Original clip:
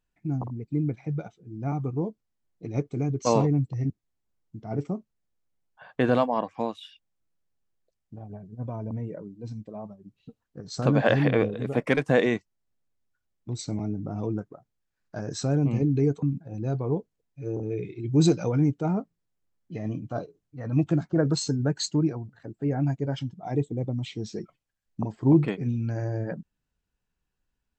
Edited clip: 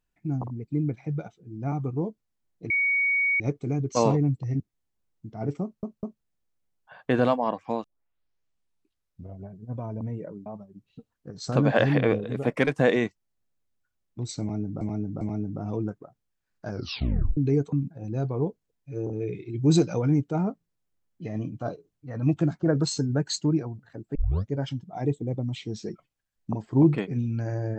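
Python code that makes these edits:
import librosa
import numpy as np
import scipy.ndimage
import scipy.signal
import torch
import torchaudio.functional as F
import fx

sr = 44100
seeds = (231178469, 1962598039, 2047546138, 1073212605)

y = fx.edit(x, sr, fx.insert_tone(at_s=2.7, length_s=0.7, hz=2240.0, db=-20.5),
    fx.stutter(start_s=4.93, slice_s=0.2, count=3),
    fx.tape_start(start_s=6.74, length_s=1.68),
    fx.cut(start_s=9.36, length_s=0.4),
    fx.repeat(start_s=13.71, length_s=0.4, count=3),
    fx.tape_stop(start_s=15.2, length_s=0.67),
    fx.tape_start(start_s=22.65, length_s=0.36), tone=tone)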